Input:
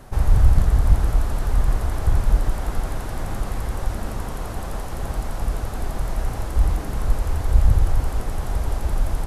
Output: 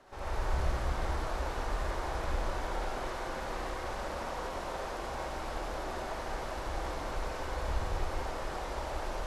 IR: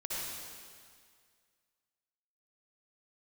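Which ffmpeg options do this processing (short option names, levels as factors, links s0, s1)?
-filter_complex "[0:a]acrossover=split=310 6600:gain=0.141 1 0.158[s0][s1][s2];[s0][s1][s2]amix=inputs=3:normalize=0[s3];[1:a]atrim=start_sample=2205[s4];[s3][s4]afir=irnorm=-1:irlink=0,volume=0.531"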